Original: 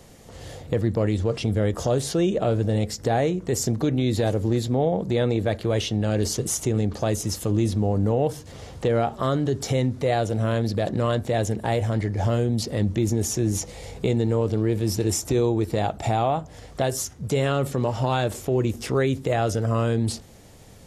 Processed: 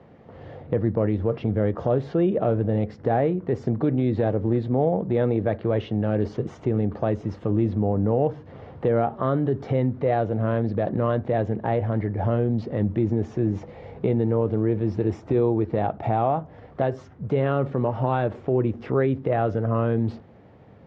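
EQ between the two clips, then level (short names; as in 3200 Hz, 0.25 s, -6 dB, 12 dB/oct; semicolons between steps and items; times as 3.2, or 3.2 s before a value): HPF 100 Hz; LPF 1700 Hz 12 dB/oct; air absorption 130 m; +1.0 dB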